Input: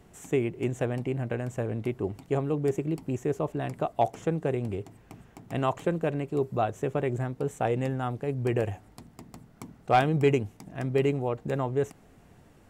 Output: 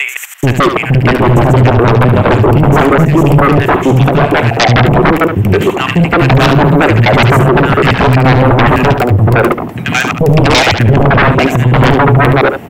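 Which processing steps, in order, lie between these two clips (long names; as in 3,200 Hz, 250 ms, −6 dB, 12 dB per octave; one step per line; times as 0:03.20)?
slices reordered back to front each 85 ms, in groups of 5
high-pass filter 85 Hz 24 dB per octave
flat-topped bell 6,200 Hz −11 dB
in parallel at +2 dB: brickwall limiter −21 dBFS, peak gain reduction 11 dB
on the sum: three-band delay without the direct sound highs, lows, mids 430/600 ms, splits 260/1,500 Hz
sine wavefolder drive 17 dB, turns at −7 dBFS
on a send: single-tap delay 72 ms −8.5 dB
on the sum: level +3 dB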